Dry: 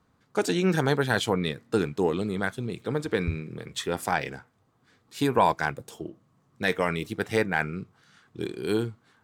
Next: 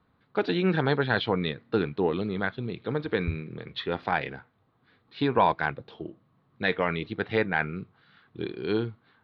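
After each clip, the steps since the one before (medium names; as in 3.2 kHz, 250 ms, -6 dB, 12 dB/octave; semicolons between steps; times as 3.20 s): elliptic low-pass 4.1 kHz, stop band 50 dB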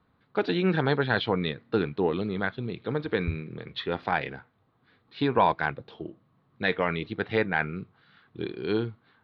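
no audible change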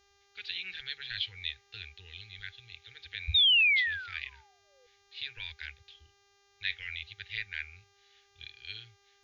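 painted sound fall, 3.34–4.87 s, 470–3800 Hz -22 dBFS; inverse Chebyshev band-stop 140–1200 Hz, stop band 40 dB; mains buzz 400 Hz, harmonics 17, -68 dBFS -2 dB/octave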